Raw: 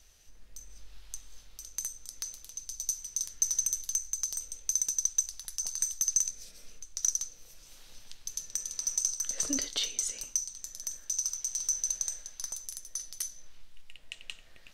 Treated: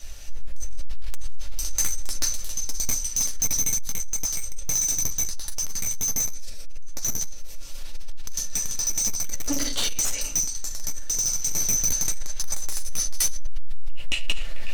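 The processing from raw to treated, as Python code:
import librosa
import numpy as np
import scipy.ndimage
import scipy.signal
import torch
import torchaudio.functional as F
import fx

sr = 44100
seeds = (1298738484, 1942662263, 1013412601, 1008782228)

y = fx.room_shoebox(x, sr, seeds[0], volume_m3=140.0, walls='furnished', distance_m=2.4)
y = 10.0 ** (-27.0 / 20.0) * np.tanh(y / 10.0 ** (-27.0 / 20.0))
y = fx.rider(y, sr, range_db=10, speed_s=2.0)
y = y * 10.0 ** (8.5 / 20.0)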